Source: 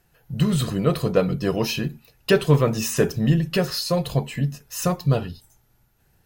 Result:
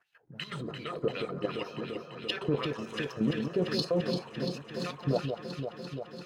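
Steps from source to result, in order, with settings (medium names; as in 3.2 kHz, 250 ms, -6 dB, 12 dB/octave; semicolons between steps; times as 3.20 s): wah-wah 2.7 Hz 300–3500 Hz, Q 2.8; peak limiter -23.5 dBFS, peak gain reduction 10.5 dB; level held to a coarse grid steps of 11 dB; echo whose repeats swap between lows and highs 171 ms, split 1.2 kHz, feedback 88%, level -6 dB; trim +7 dB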